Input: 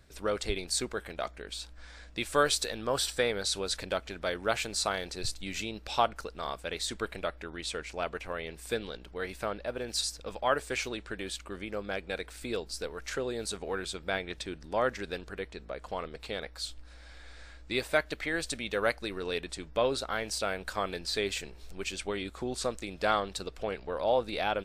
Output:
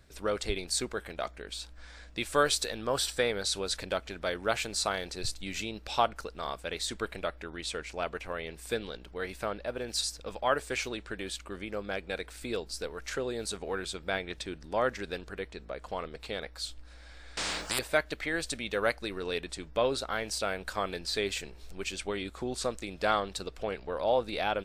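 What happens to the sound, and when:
17.37–17.79 spectral compressor 10:1

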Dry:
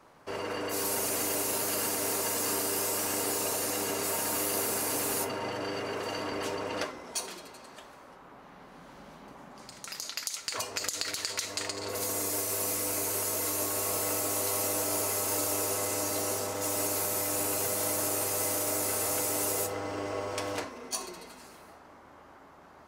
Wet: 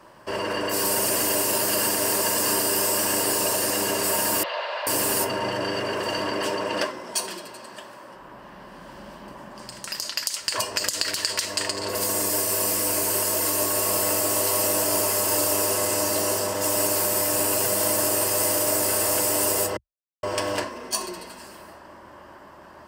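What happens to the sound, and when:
4.43–4.87 Chebyshev band-pass 550–4000 Hz, order 4
6.3–8.15 HPF 120 Hz
19.77–20.23 mute
whole clip: ripple EQ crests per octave 1.3, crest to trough 7 dB; gain +7 dB

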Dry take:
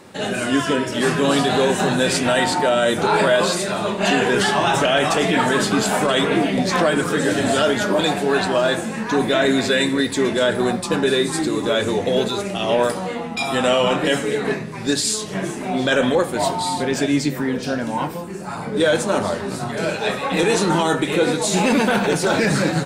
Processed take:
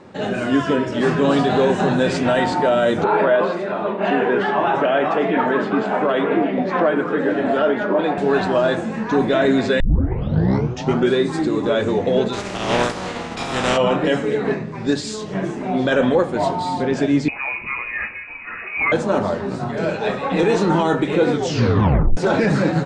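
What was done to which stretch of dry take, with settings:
3.04–8.18 three-band isolator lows -17 dB, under 200 Hz, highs -19 dB, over 3000 Hz
9.8 tape start 1.37 s
12.32–13.76 spectral contrast lowered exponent 0.4
17.28–18.92 inverted band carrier 2700 Hz
21.3 tape stop 0.87 s
whole clip: LPF 7400 Hz 24 dB/oct; high shelf 2300 Hz -12 dB; gain +2 dB

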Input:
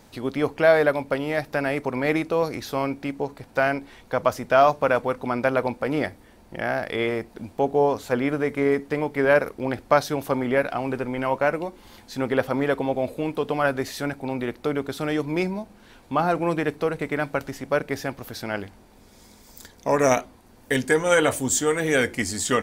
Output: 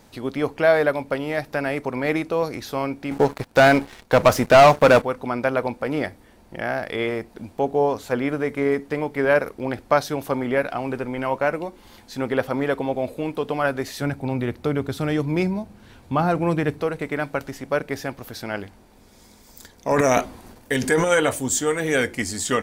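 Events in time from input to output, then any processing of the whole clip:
3.11–5.02 sample leveller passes 3
14.01–16.82 bell 100 Hz +11 dB 1.7 oct
19.91–21.08 transient shaper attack 0 dB, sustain +10 dB

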